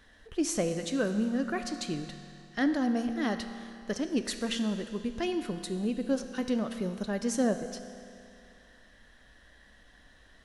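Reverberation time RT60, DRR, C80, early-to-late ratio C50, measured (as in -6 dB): 2.5 s, 7.0 dB, 9.0 dB, 8.5 dB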